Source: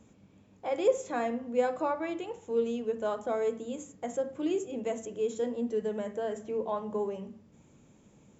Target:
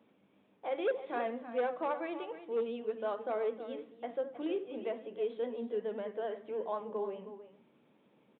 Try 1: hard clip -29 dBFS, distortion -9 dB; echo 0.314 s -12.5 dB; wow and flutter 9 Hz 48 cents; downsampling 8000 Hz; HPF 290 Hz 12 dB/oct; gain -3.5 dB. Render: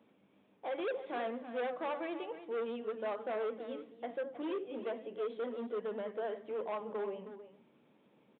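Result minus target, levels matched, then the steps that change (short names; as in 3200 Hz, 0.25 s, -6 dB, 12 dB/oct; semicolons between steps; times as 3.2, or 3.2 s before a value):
hard clip: distortion +8 dB
change: hard clip -22.5 dBFS, distortion -16 dB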